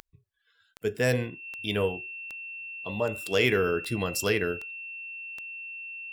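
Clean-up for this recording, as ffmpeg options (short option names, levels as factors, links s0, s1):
-af "adeclick=t=4,bandreject=f=2700:w=30"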